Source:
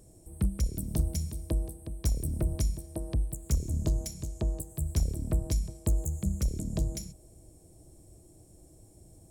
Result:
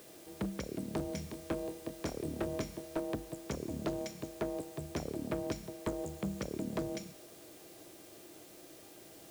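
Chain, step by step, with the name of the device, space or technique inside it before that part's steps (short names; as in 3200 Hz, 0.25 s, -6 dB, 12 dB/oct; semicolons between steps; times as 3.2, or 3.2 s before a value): aircraft radio (BPF 350–2500 Hz; hard clip -37 dBFS, distortion -10 dB; buzz 400 Hz, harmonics 30, -73 dBFS 0 dB/oct; white noise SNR 18 dB); 1.09–3 doubler 25 ms -9.5 dB; gain +8 dB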